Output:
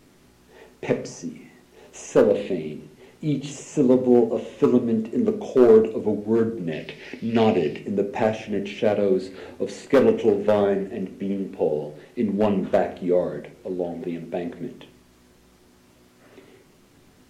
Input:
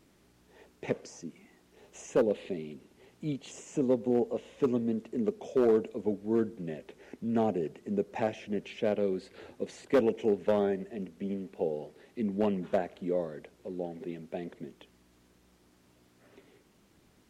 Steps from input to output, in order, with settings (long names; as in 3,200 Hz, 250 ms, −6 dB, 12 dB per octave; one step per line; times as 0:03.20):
0:06.72–0:07.79: flat-topped bell 3,200 Hz +11.5 dB
rectangular room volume 47 cubic metres, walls mixed, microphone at 0.32 metres
level +8 dB